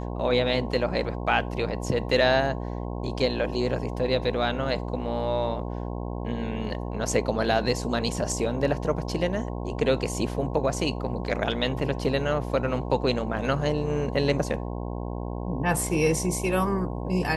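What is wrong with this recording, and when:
buzz 60 Hz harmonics 18 -32 dBFS

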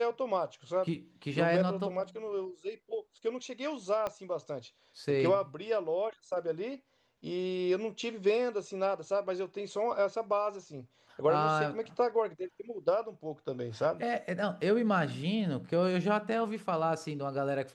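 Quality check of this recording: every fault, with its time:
4.07 pop -21 dBFS

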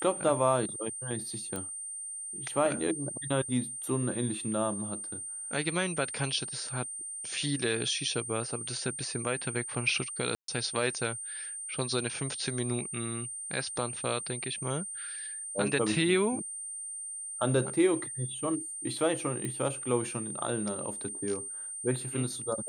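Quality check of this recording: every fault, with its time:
tone 8800 Hz -37 dBFS
1.56 pop -21 dBFS
10.35–10.48 gap 0.133 s
19.45 pop -22 dBFS

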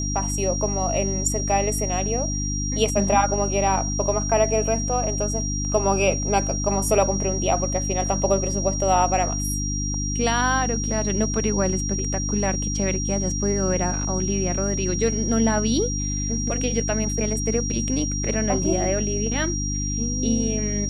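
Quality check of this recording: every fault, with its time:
hum 50 Hz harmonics 6 -27 dBFS
tone 5700 Hz -28 dBFS

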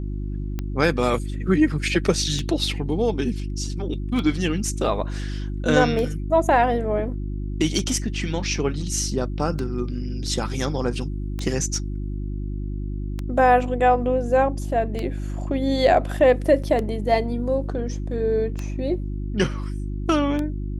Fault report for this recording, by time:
hum 50 Hz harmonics 7 -28 dBFS
tick 33 1/3 rpm -15 dBFS
16.63–16.64 gap 6 ms

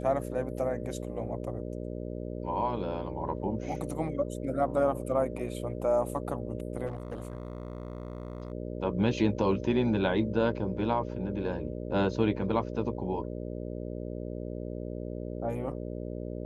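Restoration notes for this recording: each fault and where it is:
buzz 60 Hz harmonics 10 -37 dBFS
6.86–8.52 clipped -32.5 dBFS

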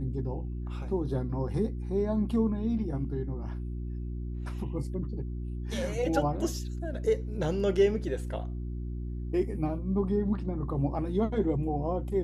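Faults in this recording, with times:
hum 60 Hz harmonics 6 -35 dBFS

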